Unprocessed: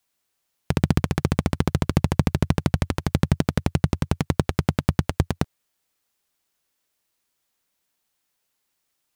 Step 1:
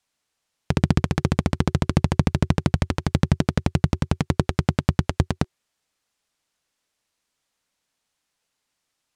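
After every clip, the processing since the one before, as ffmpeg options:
ffmpeg -i in.wav -af "lowpass=8700,bandreject=frequency=370:width=12,volume=1dB" out.wav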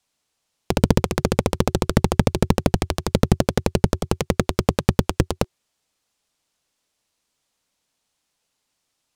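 ffmpeg -i in.wav -af "equalizer=frequency=1700:width=1.3:gain=-4,aeval=exprs='0.841*(cos(1*acos(clip(val(0)/0.841,-1,1)))-cos(1*PI/2))+0.299*(cos(7*acos(clip(val(0)/0.841,-1,1)))-cos(7*PI/2))':channel_layout=same" out.wav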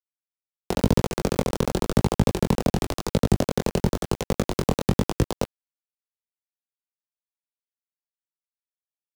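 ffmpeg -i in.wav -filter_complex "[0:a]acrossover=split=110|1300|2600[link_01][link_02][link_03][link_04];[link_03]alimiter=level_in=2dB:limit=-24dB:level=0:latency=1,volume=-2dB[link_05];[link_01][link_02][link_05][link_04]amix=inputs=4:normalize=0,flanger=delay=18:depth=6.2:speed=0.95,aeval=exprs='val(0)*gte(abs(val(0)),0.0422)':channel_layout=same" out.wav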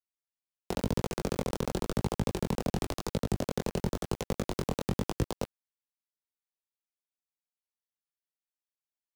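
ffmpeg -i in.wav -af "alimiter=limit=-12dB:level=0:latency=1:release=34,volume=-6.5dB" out.wav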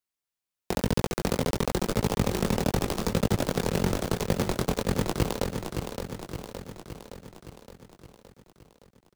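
ffmpeg -i in.wav -filter_complex "[0:a]acrusher=bits=2:mode=log:mix=0:aa=0.000001,asplit=2[link_01][link_02];[link_02]aecho=0:1:567|1134|1701|2268|2835|3402|3969|4536:0.473|0.284|0.17|0.102|0.0613|0.0368|0.0221|0.0132[link_03];[link_01][link_03]amix=inputs=2:normalize=0,volume=3.5dB" out.wav

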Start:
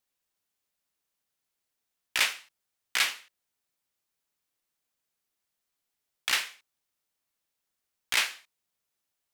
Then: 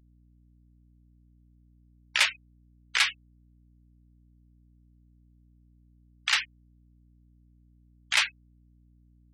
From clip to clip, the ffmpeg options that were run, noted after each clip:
ffmpeg -i in.wav -af "acrusher=bits=3:mode=log:mix=0:aa=0.000001,afftfilt=real='re*gte(hypot(re,im),0.0355)':imag='im*gte(hypot(re,im),0.0355)':win_size=1024:overlap=0.75,aeval=exprs='val(0)+0.000891*(sin(2*PI*60*n/s)+sin(2*PI*2*60*n/s)/2+sin(2*PI*3*60*n/s)/3+sin(2*PI*4*60*n/s)/4+sin(2*PI*5*60*n/s)/5)':channel_layout=same,volume=2.5dB" out.wav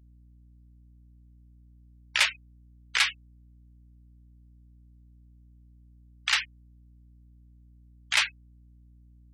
ffmpeg -i in.wav -af "equalizer=frequency=69:width=0.66:gain=6" out.wav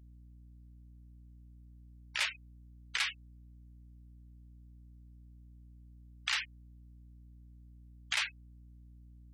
ffmpeg -i in.wav -af "alimiter=limit=-19.5dB:level=0:latency=1:release=191" out.wav

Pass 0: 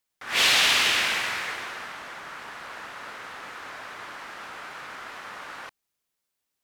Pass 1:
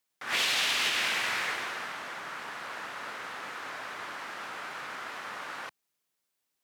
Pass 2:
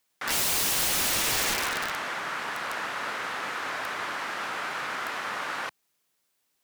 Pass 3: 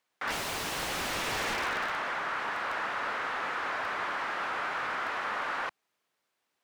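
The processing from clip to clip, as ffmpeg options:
ffmpeg -i in.wav -af "alimiter=limit=-18dB:level=0:latency=1:release=343,highpass=110" out.wav
ffmpeg -i in.wav -af "aeval=exprs='(mod(25.1*val(0)+1,2)-1)/25.1':channel_layout=same,volume=7dB" out.wav
ffmpeg -i in.wav -filter_complex "[0:a]asplit=2[link_01][link_02];[link_02]highpass=frequency=720:poles=1,volume=9dB,asoftclip=type=tanh:threshold=-20.5dB[link_03];[link_01][link_03]amix=inputs=2:normalize=0,lowpass=frequency=1300:poles=1,volume=-6dB" out.wav

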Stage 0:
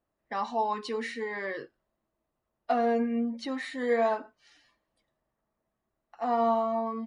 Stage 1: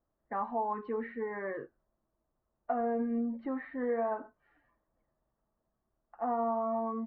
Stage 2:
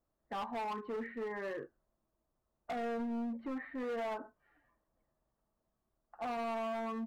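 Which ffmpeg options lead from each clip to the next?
ffmpeg -i in.wav -af "lowpass=frequency=1600:width=0.5412,lowpass=frequency=1600:width=1.3066,lowshelf=frequency=75:gain=8.5,acompressor=threshold=-27dB:ratio=6,volume=-1.5dB" out.wav
ffmpeg -i in.wav -af "asoftclip=type=hard:threshold=-34dB,volume=-1.5dB" out.wav

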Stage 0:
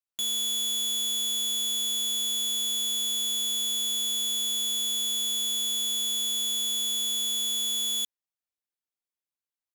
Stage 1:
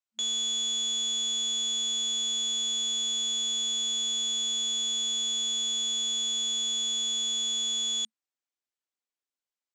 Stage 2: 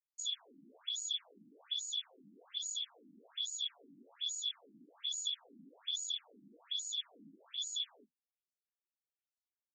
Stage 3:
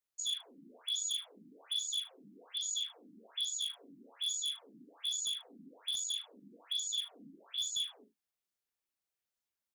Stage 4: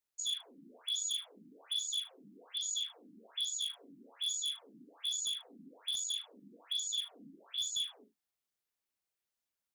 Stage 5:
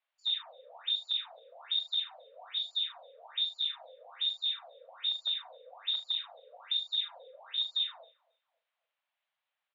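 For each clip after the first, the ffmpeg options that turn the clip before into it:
ffmpeg -i in.wav -af "afftfilt=real='re*between(b*sr/4096,220,8600)':imag='im*between(b*sr/4096,220,8600)':win_size=4096:overlap=0.75" out.wav
ffmpeg -i in.wav -af "afftfilt=real='hypot(re,im)*cos(2*PI*random(0))':imag='hypot(re,im)*sin(2*PI*random(1))':win_size=512:overlap=0.75,afftfilt=real='re*between(b*sr/1024,230*pow(6000/230,0.5+0.5*sin(2*PI*1.2*pts/sr))/1.41,230*pow(6000/230,0.5+0.5*sin(2*PI*1.2*pts/sr))*1.41)':imag='im*between(b*sr/1024,230*pow(6000/230,0.5+0.5*sin(2*PI*1.2*pts/sr))/1.41,230*pow(6000/230,0.5+0.5*sin(2*PI*1.2*pts/sr))*1.41)':win_size=1024:overlap=0.75" out.wav
ffmpeg -i in.wav -af "aeval=exprs='0.0237*(abs(mod(val(0)/0.0237+3,4)-2)-1)':channel_layout=same,aecho=1:1:40|76:0.398|0.15,volume=3dB" out.wav
ffmpeg -i in.wav -af "asoftclip=type=hard:threshold=-28.5dB" out.wav
ffmpeg -i in.wav -filter_complex "[0:a]asplit=2[link_01][link_02];[link_02]adelay=271,lowpass=frequency=860:poles=1,volume=-21.5dB,asplit=2[link_03][link_04];[link_04]adelay=271,lowpass=frequency=860:poles=1,volume=0.46,asplit=2[link_05][link_06];[link_06]adelay=271,lowpass=frequency=860:poles=1,volume=0.46[link_07];[link_01][link_03][link_05][link_07]amix=inputs=4:normalize=0,highpass=frequency=320:width_type=q:width=0.5412,highpass=frequency=320:width_type=q:width=1.307,lowpass=frequency=3300:width_type=q:width=0.5176,lowpass=frequency=3300:width_type=q:width=0.7071,lowpass=frequency=3300:width_type=q:width=1.932,afreqshift=240,volume=9dB" out.wav

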